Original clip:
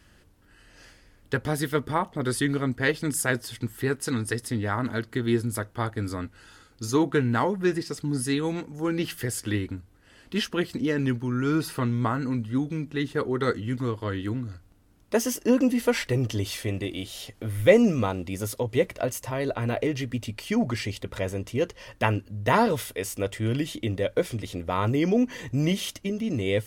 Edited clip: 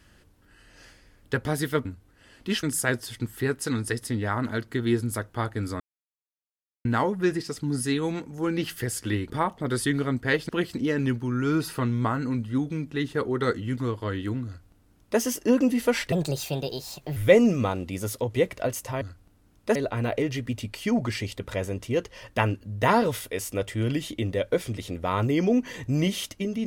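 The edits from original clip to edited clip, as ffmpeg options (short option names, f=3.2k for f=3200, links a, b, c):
-filter_complex "[0:a]asplit=11[a][b][c][d][e][f][g][h][i][j][k];[a]atrim=end=1.852[l];[b]atrim=start=9.708:end=10.492[m];[c]atrim=start=3.038:end=6.21,asetpts=PTS-STARTPTS,afade=t=out:st=3.168:d=0.004:c=hsin[n];[d]atrim=start=6.21:end=7.26,asetpts=PTS-STARTPTS,volume=0[o];[e]atrim=start=7.26:end=9.712,asetpts=PTS-STARTPTS,afade=t=in:d=0.004:c=hsin[p];[f]atrim=start=1.848:end=3.042[q];[g]atrim=start=10.488:end=16.124[r];[h]atrim=start=16.12:end=17.55,asetpts=PTS-STARTPTS,asetrate=60417,aresample=44100,atrim=end_sample=46031,asetpts=PTS-STARTPTS[s];[i]atrim=start=17.546:end=19.402[t];[j]atrim=start=14.458:end=15.202[u];[k]atrim=start=19.398[v];[l][m]acrossfade=d=0.004:c1=hsin:c2=hsin[w];[n][o][p]concat=n=3:v=0:a=1[x];[w][x]acrossfade=d=0.004:c1=hsin:c2=hsin[y];[y][q]acrossfade=d=0.004:c1=hsin:c2=hsin[z];[z][r]acrossfade=d=0.004:c1=hsin:c2=hsin[aa];[aa][s]acrossfade=d=0.004:c1=hsin:c2=hsin[ab];[ab][t]acrossfade=d=0.004:c1=hsin:c2=hsin[ac];[ac][u]acrossfade=d=0.004:c1=hsin:c2=hsin[ad];[ad][v]acrossfade=d=0.004:c1=hsin:c2=hsin"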